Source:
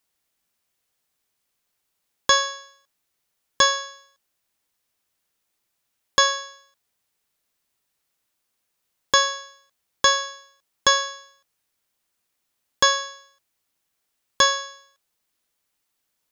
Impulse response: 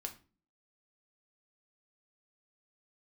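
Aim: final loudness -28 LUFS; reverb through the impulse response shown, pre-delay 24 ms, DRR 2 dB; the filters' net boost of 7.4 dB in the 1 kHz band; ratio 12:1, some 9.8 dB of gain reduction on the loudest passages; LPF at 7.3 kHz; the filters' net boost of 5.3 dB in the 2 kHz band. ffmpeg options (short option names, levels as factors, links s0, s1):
-filter_complex "[0:a]lowpass=7300,equalizer=f=1000:t=o:g=7,equalizer=f=2000:t=o:g=4,acompressor=threshold=0.141:ratio=12,asplit=2[s0][s1];[1:a]atrim=start_sample=2205,adelay=24[s2];[s1][s2]afir=irnorm=-1:irlink=0,volume=1[s3];[s0][s3]amix=inputs=2:normalize=0,volume=0.631"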